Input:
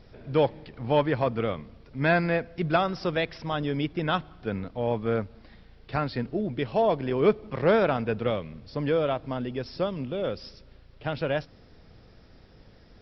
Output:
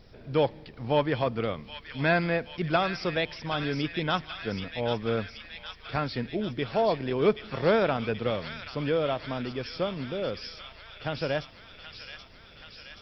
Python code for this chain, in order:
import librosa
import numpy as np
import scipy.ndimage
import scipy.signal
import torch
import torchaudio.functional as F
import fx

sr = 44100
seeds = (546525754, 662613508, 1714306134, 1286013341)

y = fx.high_shelf(x, sr, hz=4200.0, db=8.0)
y = fx.echo_wet_highpass(y, sr, ms=778, feedback_pct=69, hz=2100.0, wet_db=-4.0)
y = y * librosa.db_to_amplitude(-2.0)